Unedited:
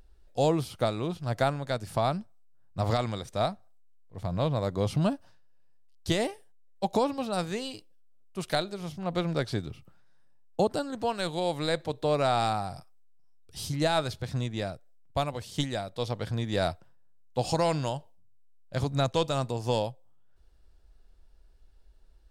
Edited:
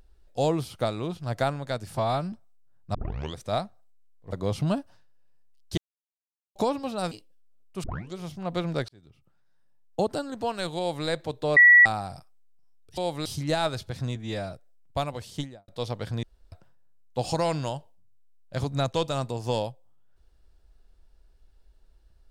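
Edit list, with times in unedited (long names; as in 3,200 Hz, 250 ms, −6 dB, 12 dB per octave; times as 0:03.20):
0:01.95–0:02.20: time-stretch 1.5×
0:02.82: tape start 0.41 s
0:04.20–0:04.67: remove
0:06.12–0:06.90: silence
0:07.46–0:07.72: remove
0:08.44: tape start 0.33 s
0:09.49–0:10.71: fade in
0:11.39–0:11.67: duplicate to 0:13.58
0:12.17–0:12.46: beep over 1,940 Hz −10.5 dBFS
0:14.48–0:14.73: time-stretch 1.5×
0:15.46–0:15.88: fade out and dull
0:16.43–0:16.72: fill with room tone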